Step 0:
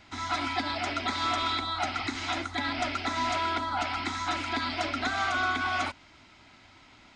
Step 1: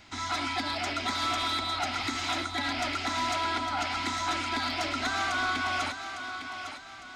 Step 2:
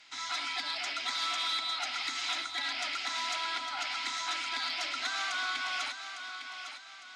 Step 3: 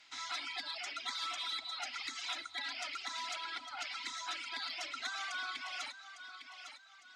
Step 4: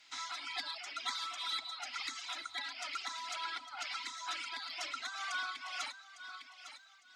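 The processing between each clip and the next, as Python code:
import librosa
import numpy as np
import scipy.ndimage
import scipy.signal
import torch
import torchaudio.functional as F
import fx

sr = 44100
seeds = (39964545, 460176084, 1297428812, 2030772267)

y1 = fx.high_shelf(x, sr, hz=4900.0, db=7.5)
y1 = 10.0 ** (-23.0 / 20.0) * np.tanh(y1 / 10.0 ** (-23.0 / 20.0))
y1 = fx.echo_thinned(y1, sr, ms=855, feedback_pct=39, hz=180.0, wet_db=-8.5)
y2 = fx.bandpass_q(y1, sr, hz=4000.0, q=0.57)
y3 = fx.dereverb_blind(y2, sr, rt60_s=2.0)
y3 = y3 * 10.0 ** (-4.0 / 20.0)
y4 = fx.high_shelf(y3, sr, hz=5000.0, db=5.5)
y4 = fx.tremolo_shape(y4, sr, shape='triangle', hz=2.1, depth_pct=55)
y4 = fx.dynamic_eq(y4, sr, hz=1100.0, q=1.5, threshold_db=-58.0, ratio=4.0, max_db=5)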